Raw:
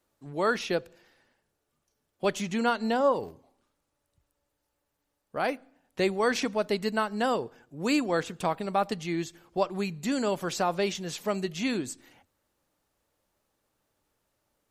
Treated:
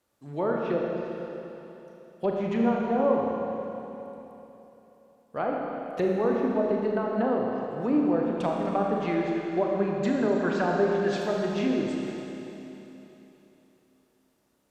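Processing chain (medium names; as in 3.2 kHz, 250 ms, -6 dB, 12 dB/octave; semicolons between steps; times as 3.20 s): high-pass 42 Hz; low-pass that closes with the level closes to 750 Hz, closed at -24 dBFS; 8.78–11.16 s: graphic EQ with 31 bands 400 Hz +4 dB, 1.6 kHz +12 dB, 10 kHz -6 dB; Schroeder reverb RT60 3.4 s, combs from 27 ms, DRR -1.5 dB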